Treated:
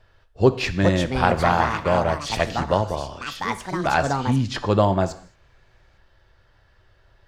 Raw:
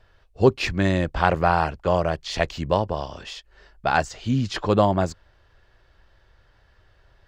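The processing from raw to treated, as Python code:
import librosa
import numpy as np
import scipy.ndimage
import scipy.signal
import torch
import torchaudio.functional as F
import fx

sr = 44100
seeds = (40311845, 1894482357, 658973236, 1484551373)

y = fx.rev_gated(x, sr, seeds[0], gate_ms=250, shape='falling', drr_db=11.0)
y = fx.echo_pitch(y, sr, ms=524, semitones=5, count=2, db_per_echo=-6.0)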